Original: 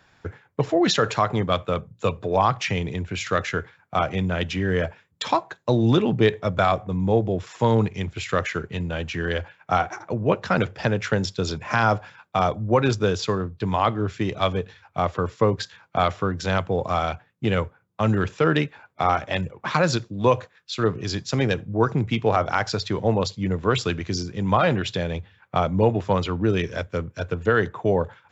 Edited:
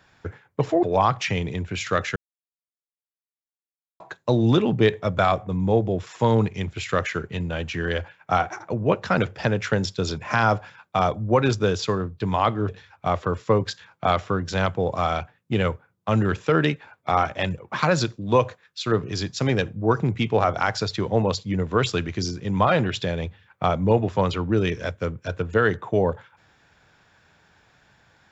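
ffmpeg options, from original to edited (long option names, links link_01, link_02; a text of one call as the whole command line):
ffmpeg -i in.wav -filter_complex "[0:a]asplit=5[link_01][link_02][link_03][link_04][link_05];[link_01]atrim=end=0.832[link_06];[link_02]atrim=start=2.228:end=3.56,asetpts=PTS-STARTPTS,afade=type=out:start_time=1.328:duration=0.004:curve=hsin[link_07];[link_03]atrim=start=3.56:end=5.4,asetpts=PTS-STARTPTS,volume=0[link_08];[link_04]atrim=start=5.4:end=14.092,asetpts=PTS-STARTPTS,afade=type=in:duration=0.004:curve=hsin[link_09];[link_05]atrim=start=14.608[link_10];[link_07][link_08][link_09]concat=n=3:v=0:a=1[link_11];[link_06][link_11]acrossfade=duration=0.004:curve1=hsin:curve2=hsin[link_12];[link_12][link_10]acrossfade=duration=0.004:curve1=hsin:curve2=hsin" out.wav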